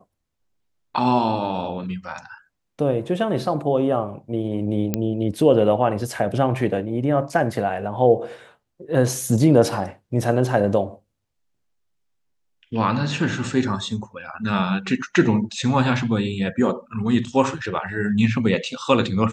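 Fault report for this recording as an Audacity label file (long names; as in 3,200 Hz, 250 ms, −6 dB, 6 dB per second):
4.940000	4.940000	click −7 dBFS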